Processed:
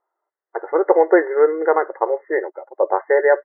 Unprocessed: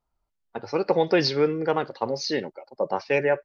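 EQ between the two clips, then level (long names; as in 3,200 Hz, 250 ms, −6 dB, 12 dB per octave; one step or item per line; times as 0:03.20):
linear-phase brick-wall band-pass 320–2,100 Hz
+8.0 dB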